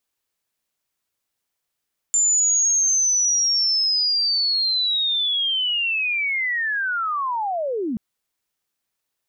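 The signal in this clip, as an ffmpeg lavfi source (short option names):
-f lavfi -i "aevalsrc='pow(10,(-15-7*t/5.83)/20)*sin(2*PI*(7200*t-7000*t*t/(2*5.83)))':d=5.83:s=44100"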